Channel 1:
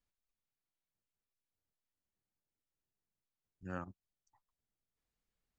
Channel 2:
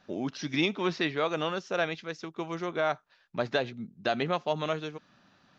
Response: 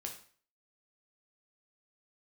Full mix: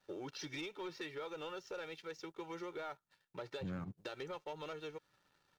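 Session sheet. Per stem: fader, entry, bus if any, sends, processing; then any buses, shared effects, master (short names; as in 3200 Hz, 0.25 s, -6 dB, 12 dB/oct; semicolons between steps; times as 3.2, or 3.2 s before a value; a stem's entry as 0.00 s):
+1.5 dB, 0.00 s, no send, bell 140 Hz +15 dB 1.2 oct; compressor 6:1, threshold -45 dBFS, peak gain reduction 13 dB
-15.0 dB, 0.00 s, no send, HPF 68 Hz 24 dB/oct; comb 2.2 ms, depth 99%; compressor 6:1, threshold -32 dBFS, peak gain reduction 12.5 dB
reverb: off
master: low shelf 140 Hz -6 dB; sample leveller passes 2; vibrato 7.5 Hz 33 cents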